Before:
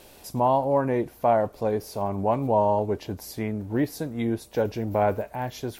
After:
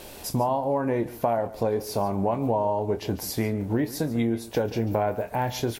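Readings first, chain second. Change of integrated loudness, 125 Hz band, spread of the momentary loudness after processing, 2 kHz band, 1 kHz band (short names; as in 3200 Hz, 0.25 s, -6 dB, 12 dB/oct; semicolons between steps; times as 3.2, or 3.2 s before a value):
-1.0 dB, +1.5 dB, 3 LU, +0.5 dB, -2.5 dB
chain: doubler 26 ms -11 dB; compressor, threshold -29 dBFS, peak gain reduction 12.5 dB; echo 0.143 s -17 dB; gain +7 dB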